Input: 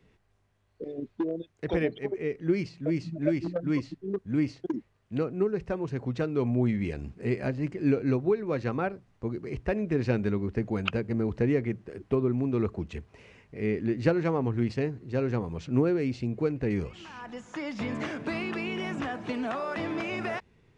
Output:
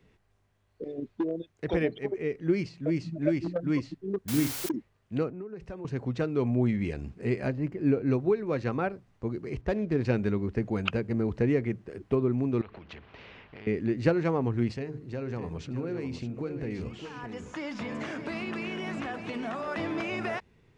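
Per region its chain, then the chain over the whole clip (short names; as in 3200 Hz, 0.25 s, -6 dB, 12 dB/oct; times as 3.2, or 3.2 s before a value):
4.28–4.69 doubler 48 ms -9.5 dB + requantised 6-bit, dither triangular
5.3–5.85 compressor 12:1, threshold -35 dBFS + three-band expander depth 70%
7.52–8.11 median filter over 5 samples + high shelf 2300 Hz -9.5 dB
9.61–10.05 median filter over 15 samples + air absorption 60 m
12.61–13.67 LPF 3300 Hz 24 dB/oct + compressor 8:1, threshold -38 dBFS + spectral compressor 2:1
14.75–19.68 notches 50/100/150/200/250/300/350/400/450 Hz + compressor 4:1, threshold -31 dBFS + echo 0.609 s -9 dB
whole clip: dry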